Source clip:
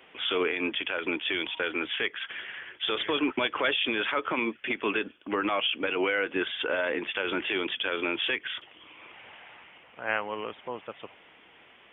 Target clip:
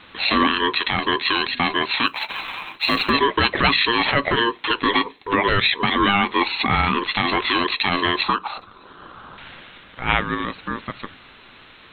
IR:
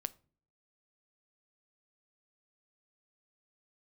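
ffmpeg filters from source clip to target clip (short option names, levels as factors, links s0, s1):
-filter_complex "[0:a]aeval=exprs='val(0)*sin(2*PI*700*n/s)':c=same,asettb=1/sr,asplit=3[s0][s1][s2];[s0]atrim=end=8.234[s3];[s1]atrim=start=8.23:end=9.38,asetpts=PTS-STARTPTS,afade=t=in:d=0.004:c=qsin,afade=t=out:st=1.146:d=0.004:c=qsin,highshelf=f=1600:t=q:w=3:g=-8[s4];[s2]atrim=start=9.376[s5];[s3][s4]acrossfade=d=0.004:c1=hsin:c2=qsin[s6];[s6][s5]acrossfade=d=0.004:c1=qsin:c2=hsin,asplit=2[s7][s8];[1:a]atrim=start_sample=2205,asetrate=83790,aresample=44100[s9];[s8][s9]afir=irnorm=-1:irlink=0,volume=5.01[s10];[s7][s10]amix=inputs=2:normalize=0,asplit=3[s11][s12][s13];[s11]afade=t=out:st=2.06:d=0.02[s14];[s12]acrusher=bits=7:mode=log:mix=0:aa=0.000001,afade=t=in:st=2.06:d=0.02,afade=t=out:st=3.09:d=0.02[s15];[s13]afade=t=in:st=3.09:d=0.02[s16];[s14][s15][s16]amix=inputs=3:normalize=0,volume=1.26"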